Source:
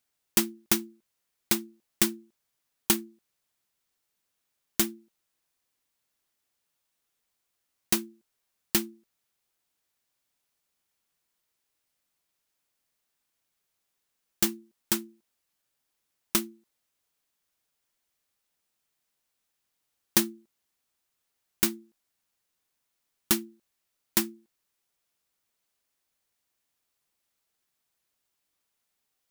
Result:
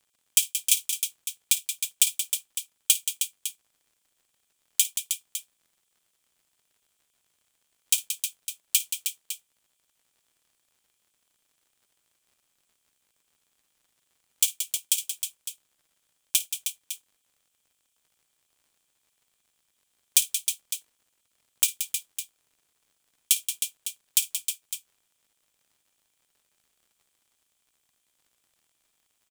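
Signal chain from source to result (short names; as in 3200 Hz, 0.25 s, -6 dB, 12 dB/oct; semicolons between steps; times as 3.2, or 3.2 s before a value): rippled Chebyshev high-pass 2300 Hz, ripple 9 dB; crackle 84/s -63 dBFS; on a send: tapped delay 54/177/313/556 ms -17/-9/-7.5/-12 dB; on the sum: gain +9 dB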